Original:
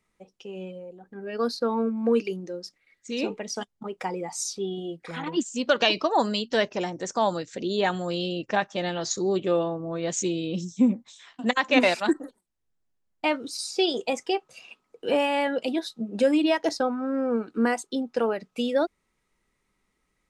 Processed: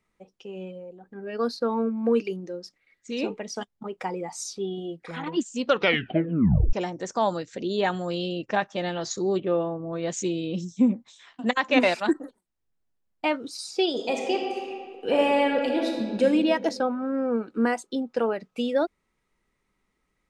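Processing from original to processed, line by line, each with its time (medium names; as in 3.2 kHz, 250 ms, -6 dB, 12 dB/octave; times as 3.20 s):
5.67 s: tape stop 1.06 s
9.40–9.93 s: distance through air 290 m
13.90–16.23 s: reverb throw, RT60 2 s, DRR 0.5 dB
whole clip: treble shelf 4.6 kHz -6 dB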